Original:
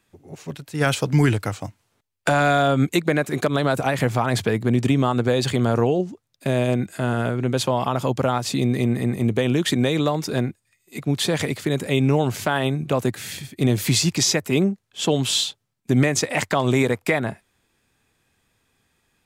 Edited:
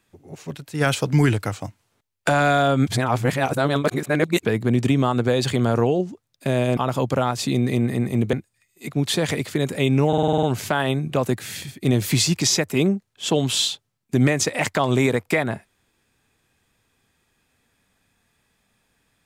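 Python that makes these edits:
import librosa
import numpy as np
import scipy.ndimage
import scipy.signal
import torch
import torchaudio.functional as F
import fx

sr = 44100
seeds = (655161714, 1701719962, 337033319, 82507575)

y = fx.edit(x, sr, fx.reverse_span(start_s=2.87, length_s=1.58),
    fx.cut(start_s=6.77, length_s=1.07),
    fx.cut(start_s=9.4, length_s=1.04),
    fx.stutter(start_s=12.19, slice_s=0.05, count=8), tone=tone)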